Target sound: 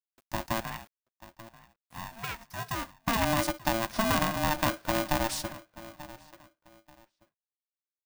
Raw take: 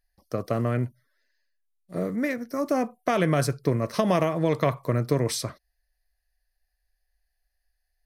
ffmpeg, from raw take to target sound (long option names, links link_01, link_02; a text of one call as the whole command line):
ffmpeg -i in.wav -filter_complex "[0:a]asettb=1/sr,asplit=3[link_01][link_02][link_03];[link_01]atrim=end=0.604[link_04];[link_02]atrim=start=0.6:end=2.95,asetpts=PTS-STARTPTS,afade=type=in:duration=0.004:curve=qsin,afade=type=out:start_time=2.346:duration=0.004:curve=qsin,highpass=640[link_05];[link_03]atrim=start=2.946[link_06];[link_04][link_05]acrossfade=duration=0.004:curve1=hsin:curve2=qsin[link_07];[link_07][link_06]acrossfade=duration=0.004:curve1=qsin:curve2=hsin,acrusher=bits=8:mix=0:aa=0.000001,asplit=2[link_08][link_09];[link_09]adelay=886,lowpass=frequency=1800:poles=1,volume=-17dB,asplit=2[link_10][link_11];[link_11]adelay=886,lowpass=frequency=1800:poles=1,volume=0.26[link_12];[link_08][link_10][link_12]amix=inputs=3:normalize=0,aeval=exprs='val(0)*sgn(sin(2*PI*450*n/s))':channel_layout=same,volume=-4.5dB" out.wav